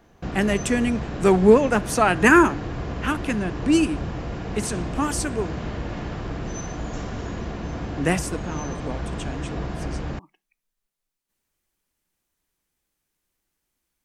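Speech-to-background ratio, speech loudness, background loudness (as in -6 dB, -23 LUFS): 10.0 dB, -21.5 LUFS, -31.5 LUFS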